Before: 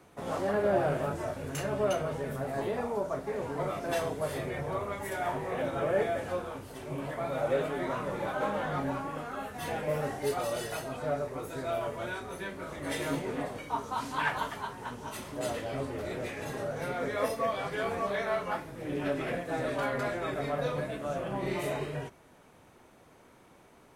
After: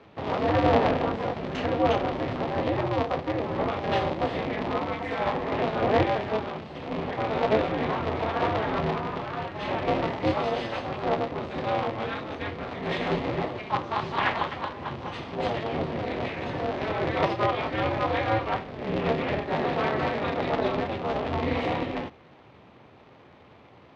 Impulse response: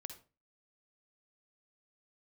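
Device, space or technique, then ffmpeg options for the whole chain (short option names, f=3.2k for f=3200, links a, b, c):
ring modulator pedal into a guitar cabinet: -af "aeval=exprs='val(0)*sgn(sin(2*PI*110*n/s))':c=same,highpass=82,equalizer=f=83:t=q:w=4:g=8,equalizer=f=120:t=q:w=4:g=6,equalizer=f=1.5k:t=q:w=4:g=-5,lowpass=f=4k:w=0.5412,lowpass=f=4k:w=1.3066,volume=6dB"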